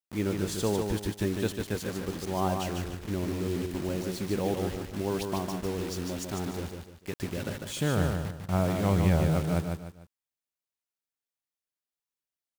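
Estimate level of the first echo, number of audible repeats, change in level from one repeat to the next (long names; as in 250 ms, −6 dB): −5.0 dB, 3, −9.0 dB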